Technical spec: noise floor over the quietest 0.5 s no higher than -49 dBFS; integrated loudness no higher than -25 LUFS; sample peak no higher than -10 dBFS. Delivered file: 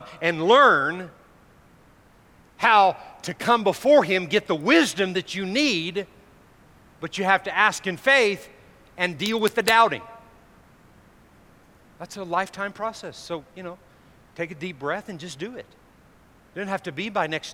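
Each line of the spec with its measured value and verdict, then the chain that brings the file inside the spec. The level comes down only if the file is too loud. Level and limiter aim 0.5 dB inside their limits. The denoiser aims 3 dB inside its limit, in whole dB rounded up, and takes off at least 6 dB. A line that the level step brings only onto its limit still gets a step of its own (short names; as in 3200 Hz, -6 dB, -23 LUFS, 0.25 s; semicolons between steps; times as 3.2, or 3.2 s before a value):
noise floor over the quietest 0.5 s -55 dBFS: OK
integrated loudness -21.5 LUFS: fail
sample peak -4.5 dBFS: fail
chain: gain -4 dB; limiter -10.5 dBFS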